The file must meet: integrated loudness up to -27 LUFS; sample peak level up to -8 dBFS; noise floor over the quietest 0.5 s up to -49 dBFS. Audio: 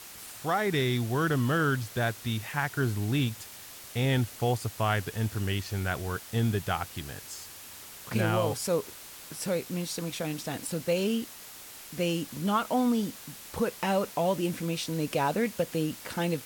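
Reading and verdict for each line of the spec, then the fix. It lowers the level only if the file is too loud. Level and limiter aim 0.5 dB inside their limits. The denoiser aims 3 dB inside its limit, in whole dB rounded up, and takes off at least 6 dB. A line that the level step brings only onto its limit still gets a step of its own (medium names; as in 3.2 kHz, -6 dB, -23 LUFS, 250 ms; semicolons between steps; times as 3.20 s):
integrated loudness -30.0 LUFS: pass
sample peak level -15.0 dBFS: pass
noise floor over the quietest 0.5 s -46 dBFS: fail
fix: noise reduction 6 dB, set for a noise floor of -46 dBFS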